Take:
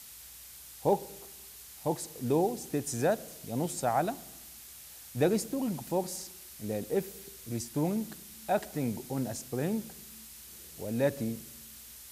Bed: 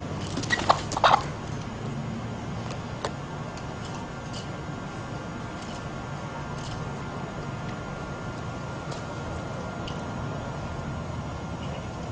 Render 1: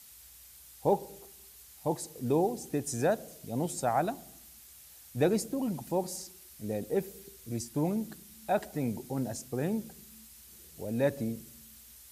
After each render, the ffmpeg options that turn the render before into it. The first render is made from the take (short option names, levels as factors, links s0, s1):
-af "afftdn=nr=6:nf=-50"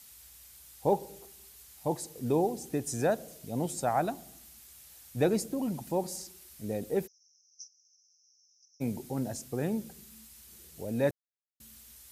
-filter_complex "[0:a]asplit=3[s0][s1][s2];[s0]afade=t=out:st=7.06:d=0.02[s3];[s1]asuperpass=centerf=5700:order=8:qfactor=5.1,afade=t=in:st=7.06:d=0.02,afade=t=out:st=8.8:d=0.02[s4];[s2]afade=t=in:st=8.8:d=0.02[s5];[s3][s4][s5]amix=inputs=3:normalize=0,asplit=3[s6][s7][s8];[s6]atrim=end=11.11,asetpts=PTS-STARTPTS,afade=t=out:st=11.106:d=0.004:c=hsin[s9];[s7]atrim=start=11.11:end=11.6,asetpts=PTS-STARTPTS,volume=0[s10];[s8]atrim=start=11.6,asetpts=PTS-STARTPTS,afade=t=in:d=0.004:c=hsin[s11];[s9][s10][s11]concat=n=3:v=0:a=1"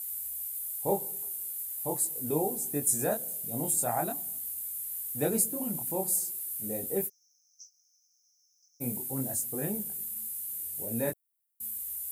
-af "flanger=delay=19.5:depth=6.6:speed=0.41,aexciter=amount=9:drive=6.2:freq=8000"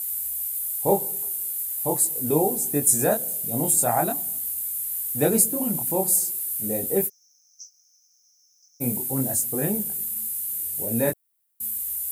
-af "volume=2.51"